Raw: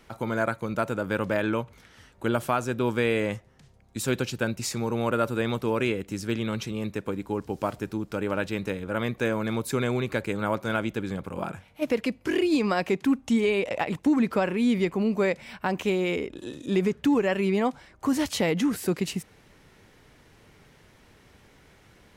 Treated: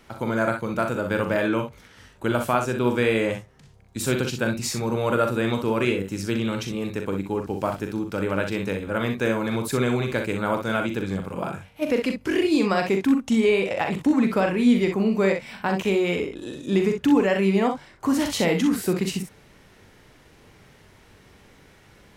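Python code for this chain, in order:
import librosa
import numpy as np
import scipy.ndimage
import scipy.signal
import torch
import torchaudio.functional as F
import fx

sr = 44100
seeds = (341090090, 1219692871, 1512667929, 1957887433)

y = fx.room_early_taps(x, sr, ms=(41, 62), db=(-7.5, -7.5))
y = y * librosa.db_to_amplitude(2.0)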